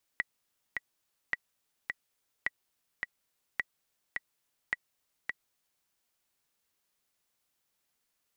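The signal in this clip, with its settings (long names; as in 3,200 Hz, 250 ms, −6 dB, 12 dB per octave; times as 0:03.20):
click track 106 BPM, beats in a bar 2, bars 5, 1,940 Hz, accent 4 dB −16 dBFS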